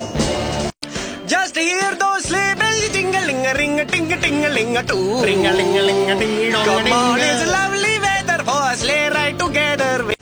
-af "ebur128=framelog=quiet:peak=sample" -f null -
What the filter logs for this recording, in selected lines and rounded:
Integrated loudness:
  I:         -16.8 LUFS
  Threshold: -26.8 LUFS
Loudness range:
  LRA:         2.1 LU
  Threshold: -36.4 LUFS
  LRA low:   -17.7 LUFS
  LRA high:  -15.6 LUFS
Sample peak:
  Peak:       -2.5 dBFS